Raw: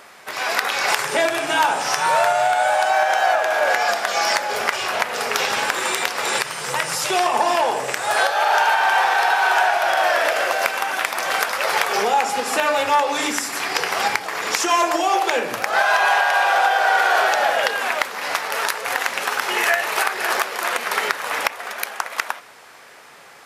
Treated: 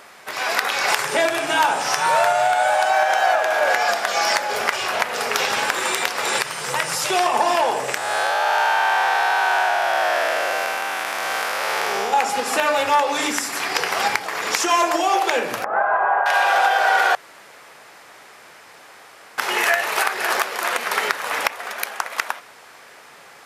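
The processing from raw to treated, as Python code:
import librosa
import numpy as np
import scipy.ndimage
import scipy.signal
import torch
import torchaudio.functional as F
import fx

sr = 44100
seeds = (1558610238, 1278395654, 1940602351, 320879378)

y = fx.spec_blur(x, sr, span_ms=222.0, at=(7.97, 12.13))
y = fx.lowpass(y, sr, hz=1400.0, slope=24, at=(15.64, 16.26))
y = fx.edit(y, sr, fx.room_tone_fill(start_s=17.15, length_s=2.23), tone=tone)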